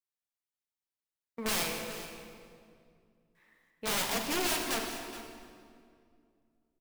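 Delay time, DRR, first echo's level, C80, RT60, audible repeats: 422 ms, 2.0 dB, -14.5 dB, 4.0 dB, 2.3 s, 1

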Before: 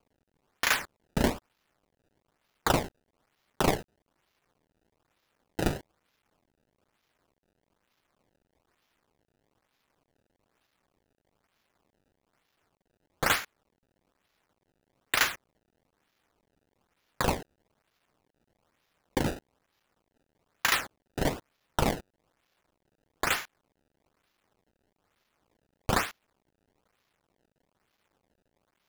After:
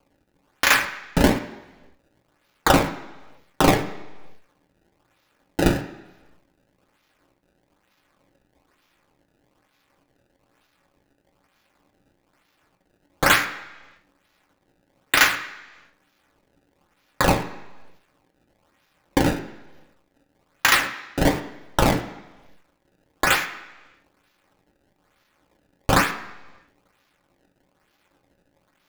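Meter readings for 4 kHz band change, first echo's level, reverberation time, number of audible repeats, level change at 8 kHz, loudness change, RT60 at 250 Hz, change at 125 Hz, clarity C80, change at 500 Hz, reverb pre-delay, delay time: +8.5 dB, no echo, 1.2 s, no echo, +8.0 dB, +8.5 dB, 0.95 s, +9.0 dB, 12.5 dB, +9.0 dB, 3 ms, no echo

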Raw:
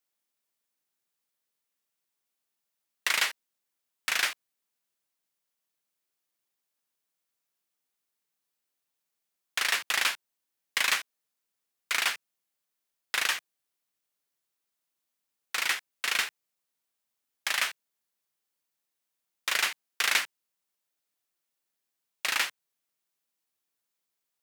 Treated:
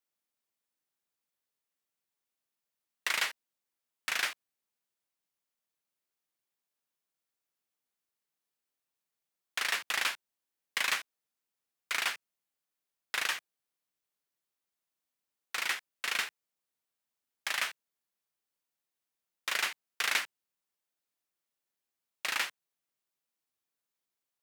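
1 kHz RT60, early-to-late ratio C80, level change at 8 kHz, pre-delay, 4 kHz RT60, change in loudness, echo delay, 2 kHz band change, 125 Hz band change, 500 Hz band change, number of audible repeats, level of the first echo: no reverb, no reverb, -5.5 dB, no reverb, no reverb, -4.5 dB, no echo, -4.0 dB, no reading, -3.0 dB, no echo, no echo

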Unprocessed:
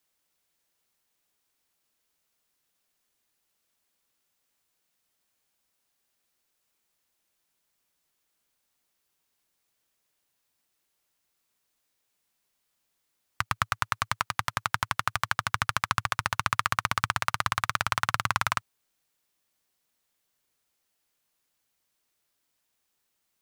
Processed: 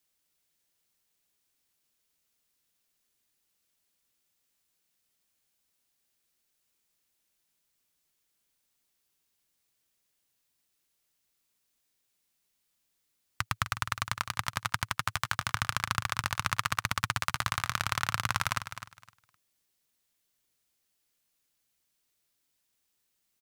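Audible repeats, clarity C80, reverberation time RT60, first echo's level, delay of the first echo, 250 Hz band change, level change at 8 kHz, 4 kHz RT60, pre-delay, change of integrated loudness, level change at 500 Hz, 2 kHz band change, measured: 2, no reverb, no reverb, -11.0 dB, 257 ms, -0.5 dB, 0.0 dB, no reverb, no reverb, -3.0 dB, -4.5 dB, -3.0 dB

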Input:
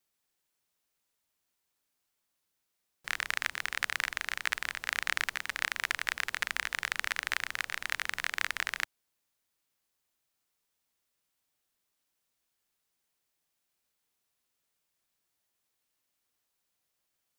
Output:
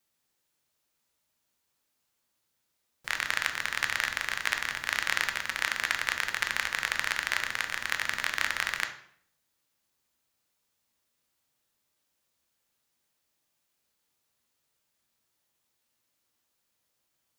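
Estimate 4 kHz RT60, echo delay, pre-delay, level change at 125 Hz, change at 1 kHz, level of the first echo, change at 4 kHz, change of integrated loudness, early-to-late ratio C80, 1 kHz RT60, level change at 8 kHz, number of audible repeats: 0.50 s, no echo, 3 ms, +6.0 dB, +4.0 dB, no echo, +3.5 dB, +3.5 dB, 13.0 dB, 0.60 s, +3.5 dB, no echo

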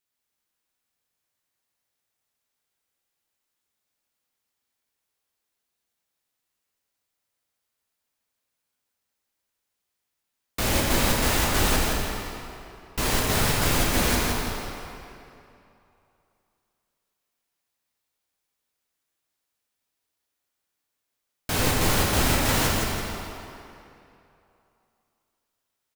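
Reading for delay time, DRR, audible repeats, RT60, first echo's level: 166 ms, -3.5 dB, 1, 2.8 s, -5.0 dB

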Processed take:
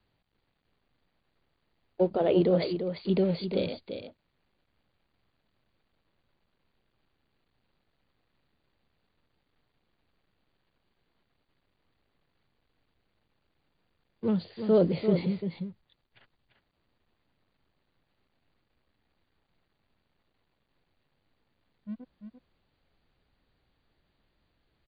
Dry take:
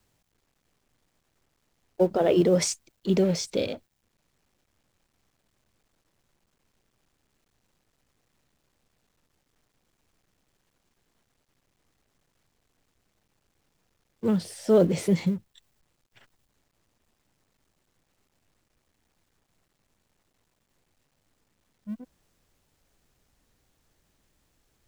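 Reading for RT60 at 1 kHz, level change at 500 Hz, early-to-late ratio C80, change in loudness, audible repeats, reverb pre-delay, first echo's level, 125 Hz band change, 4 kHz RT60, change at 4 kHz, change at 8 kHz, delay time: no reverb, -2.5 dB, no reverb, -3.0 dB, 1, no reverb, -8.0 dB, -2.5 dB, no reverb, -5.5 dB, under -40 dB, 343 ms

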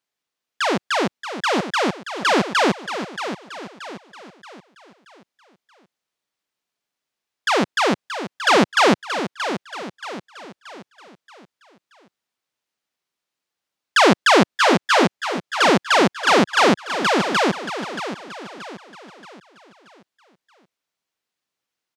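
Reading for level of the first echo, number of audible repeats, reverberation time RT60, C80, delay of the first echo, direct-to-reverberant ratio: -10.0 dB, 4, no reverb, no reverb, 628 ms, no reverb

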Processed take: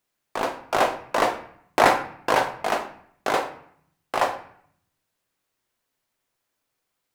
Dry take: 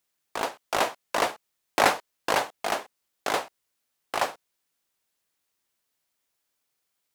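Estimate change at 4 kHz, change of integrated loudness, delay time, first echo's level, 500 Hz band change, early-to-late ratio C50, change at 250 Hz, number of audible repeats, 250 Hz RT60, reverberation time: 0.0 dB, +4.0 dB, no echo, no echo, +5.0 dB, 11.0 dB, +5.5 dB, no echo, 0.90 s, 0.65 s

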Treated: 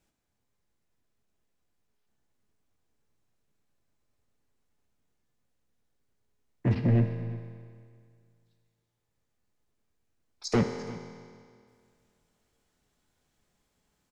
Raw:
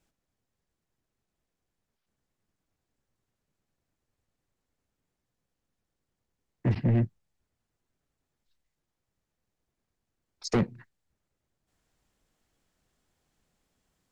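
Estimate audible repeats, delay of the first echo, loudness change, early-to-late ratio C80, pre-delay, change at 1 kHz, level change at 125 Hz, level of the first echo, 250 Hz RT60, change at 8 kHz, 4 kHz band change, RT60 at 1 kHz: 1, 346 ms, -0.5 dB, 7.0 dB, 5 ms, +1.5 dB, +1.0 dB, -18.0 dB, 2.1 s, no reading, +1.0 dB, 2.1 s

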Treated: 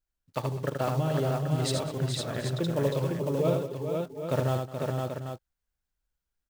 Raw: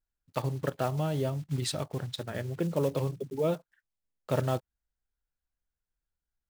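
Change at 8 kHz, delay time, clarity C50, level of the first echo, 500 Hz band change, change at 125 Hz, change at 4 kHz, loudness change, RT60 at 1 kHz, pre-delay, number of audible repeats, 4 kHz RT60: +3.0 dB, 78 ms, no reverb, -5.0 dB, +3.5 dB, +3.5 dB, +3.0 dB, +2.5 dB, no reverb, no reverb, 6, no reverb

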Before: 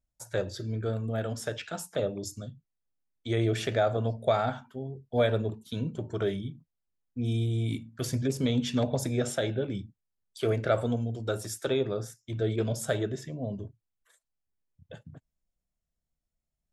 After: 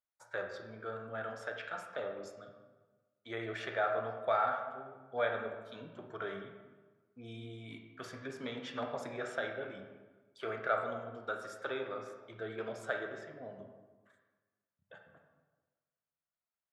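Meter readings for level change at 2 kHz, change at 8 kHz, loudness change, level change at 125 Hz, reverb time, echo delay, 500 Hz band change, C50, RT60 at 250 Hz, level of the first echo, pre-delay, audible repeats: 0.0 dB, -19.0 dB, -8.5 dB, -22.0 dB, 1.3 s, no echo, -8.5 dB, 5.5 dB, 1.4 s, no echo, 24 ms, no echo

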